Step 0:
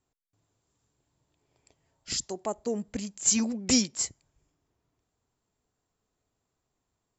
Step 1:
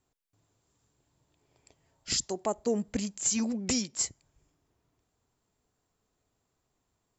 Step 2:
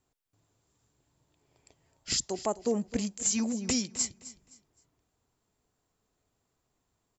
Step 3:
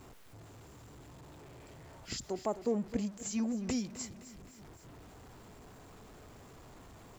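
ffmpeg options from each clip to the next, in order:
-af "alimiter=limit=0.1:level=0:latency=1:release=346,volume=1.33"
-af "aecho=1:1:260|520|780:0.15|0.0434|0.0126"
-af "aeval=exprs='val(0)+0.5*0.00794*sgn(val(0))':c=same,highshelf=f=2800:g=-12,volume=0.668"

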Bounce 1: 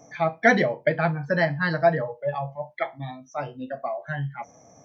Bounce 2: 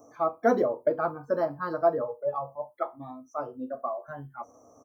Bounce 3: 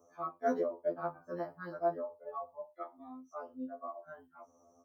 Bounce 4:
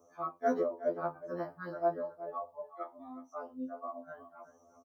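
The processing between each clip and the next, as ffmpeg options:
-af "firequalizer=gain_entry='entry(100,0);entry(160,-14);entry(250,5);entry(430,7);entry(790,0);entry(1200,11);entry(1800,-19);entry(3800,-15);entry(9400,14)':delay=0.05:min_phase=1,volume=0.501"
-af "afftfilt=real='re*2*eq(mod(b,4),0)':imag='im*2*eq(mod(b,4),0)':win_size=2048:overlap=0.75,volume=0.398"
-filter_complex "[0:a]asplit=2[s0][s1];[s1]adelay=367.3,volume=0.2,highshelf=f=4000:g=-8.27[s2];[s0][s2]amix=inputs=2:normalize=0,volume=1.19"

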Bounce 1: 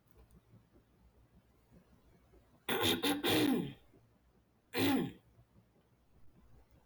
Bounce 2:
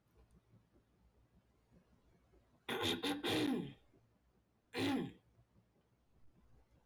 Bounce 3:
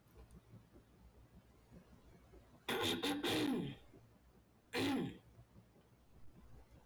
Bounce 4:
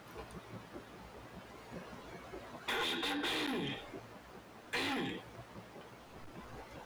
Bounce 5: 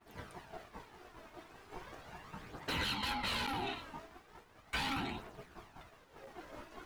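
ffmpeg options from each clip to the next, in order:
-af "lowpass=9300,volume=0.531"
-af "highshelf=f=10000:g=4,acompressor=threshold=0.00631:ratio=2.5,asoftclip=type=tanh:threshold=0.01,volume=2.51"
-filter_complex "[0:a]acrossover=split=1100[s0][s1];[s0]alimiter=level_in=6.68:limit=0.0631:level=0:latency=1,volume=0.15[s2];[s2][s1]amix=inputs=2:normalize=0,acompressor=threshold=0.00398:ratio=3,asplit=2[s3][s4];[s4]highpass=f=720:p=1,volume=11.2,asoftclip=type=tanh:threshold=0.02[s5];[s3][s5]amix=inputs=2:normalize=0,lowpass=f=2900:p=1,volume=0.501,volume=2.37"
-af "agate=range=0.0224:threshold=0.00398:ratio=3:detection=peak,aeval=exprs='val(0)*sin(2*PI*540*n/s)':c=same,aphaser=in_gain=1:out_gain=1:delay=3.3:decay=0.4:speed=0.38:type=triangular,volume=1.26"

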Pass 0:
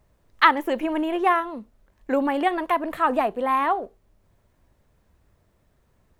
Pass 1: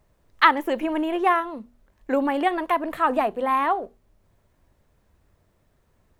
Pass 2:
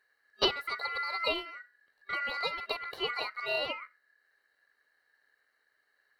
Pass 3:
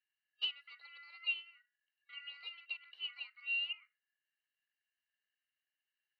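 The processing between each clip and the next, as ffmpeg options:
-af "bandreject=f=60:t=h:w=6,bandreject=f=120:t=h:w=6,bandreject=f=180:t=h:w=6,bandreject=f=240:t=h:w=6"
-af "superequalizer=8b=0.398:9b=0.282:11b=0.316:12b=3.55:14b=0.316,aeval=exprs='val(0)*sin(2*PI*1700*n/s)':c=same,volume=0.447"
-af "bandpass=f=2800:t=q:w=15:csg=0,volume=1.12"

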